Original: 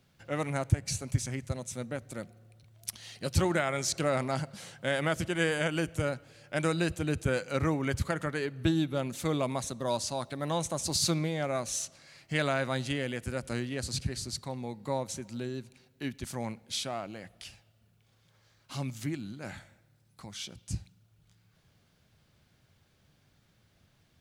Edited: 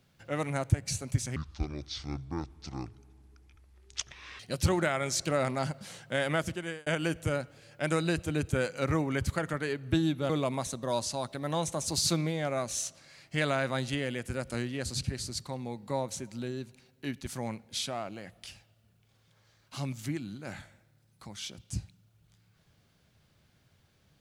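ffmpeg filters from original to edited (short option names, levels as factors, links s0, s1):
-filter_complex "[0:a]asplit=5[s0][s1][s2][s3][s4];[s0]atrim=end=1.364[s5];[s1]atrim=start=1.36:end=3.12,asetpts=PTS-STARTPTS,asetrate=25578,aresample=44100[s6];[s2]atrim=start=3.116:end=5.59,asetpts=PTS-STARTPTS,afade=t=out:st=1.984:d=0.49[s7];[s3]atrim=start=5.59:end=9.022,asetpts=PTS-STARTPTS,afade=t=in:d=0.004:c=hsin[s8];[s4]atrim=start=9.268[s9];[s5][s6]acrossfade=d=0.004:c1=hsin:c2=hsin[s10];[s7][s8]concat=n=2:v=0:a=1[s11];[s10][s11]acrossfade=d=0.004:c1=hsin:c2=hsin[s12];[s12][s9]acrossfade=d=0.004:c1=hsin:c2=hsin"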